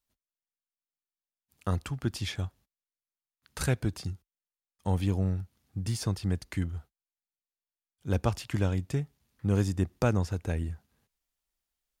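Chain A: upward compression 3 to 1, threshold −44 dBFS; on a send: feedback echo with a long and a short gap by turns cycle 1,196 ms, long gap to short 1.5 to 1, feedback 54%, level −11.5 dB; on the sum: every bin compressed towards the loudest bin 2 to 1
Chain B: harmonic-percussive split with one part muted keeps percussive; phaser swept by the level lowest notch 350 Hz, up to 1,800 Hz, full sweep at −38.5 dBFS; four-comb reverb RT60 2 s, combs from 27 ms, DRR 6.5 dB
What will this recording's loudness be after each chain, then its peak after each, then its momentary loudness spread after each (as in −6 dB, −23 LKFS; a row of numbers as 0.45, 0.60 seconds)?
−38.5, −37.5 LKFS; −12.5, −14.5 dBFS; 14, 19 LU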